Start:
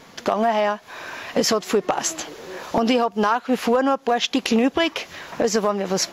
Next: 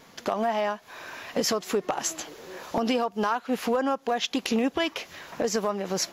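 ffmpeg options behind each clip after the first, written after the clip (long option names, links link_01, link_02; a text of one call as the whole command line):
ffmpeg -i in.wav -af "highshelf=frequency=11000:gain=7.5,volume=-6.5dB" out.wav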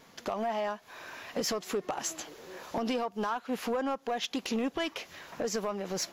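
ffmpeg -i in.wav -af "asoftclip=type=tanh:threshold=-18.5dB,volume=-4.5dB" out.wav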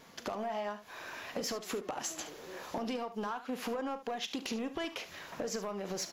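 ffmpeg -i in.wav -filter_complex "[0:a]acompressor=threshold=-34dB:ratio=6,asplit=2[link_01][link_02];[link_02]aecho=0:1:39|72:0.178|0.211[link_03];[link_01][link_03]amix=inputs=2:normalize=0" out.wav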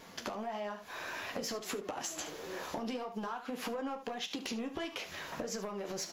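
ffmpeg -i in.wav -af "acompressor=threshold=-39dB:ratio=6,flanger=delay=9.9:depth=4:regen=-40:speed=1.6:shape=sinusoidal,volume=7.5dB" out.wav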